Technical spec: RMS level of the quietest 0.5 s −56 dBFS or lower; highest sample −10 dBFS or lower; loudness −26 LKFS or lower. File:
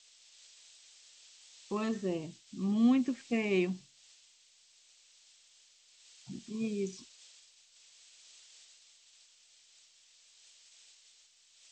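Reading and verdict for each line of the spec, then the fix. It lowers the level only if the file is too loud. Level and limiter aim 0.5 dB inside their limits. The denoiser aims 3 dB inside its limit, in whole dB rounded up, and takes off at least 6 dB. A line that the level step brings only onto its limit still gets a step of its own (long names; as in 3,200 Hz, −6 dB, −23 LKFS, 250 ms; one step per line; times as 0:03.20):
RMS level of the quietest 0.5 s −64 dBFS: in spec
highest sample −18.5 dBFS: in spec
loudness −33.5 LKFS: in spec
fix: no processing needed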